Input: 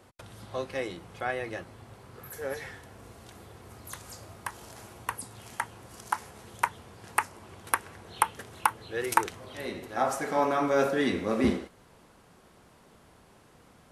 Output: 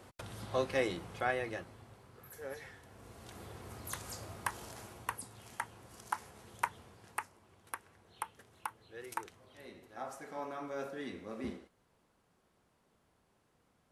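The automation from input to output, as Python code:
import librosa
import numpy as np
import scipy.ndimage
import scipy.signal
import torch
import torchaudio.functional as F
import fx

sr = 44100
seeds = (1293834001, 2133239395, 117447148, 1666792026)

y = fx.gain(x, sr, db=fx.line((0.99, 1.0), (2.15, -9.5), (2.75, -9.5), (3.45, 0.0), (4.51, 0.0), (5.33, -7.0), (6.83, -7.0), (7.43, -16.0)))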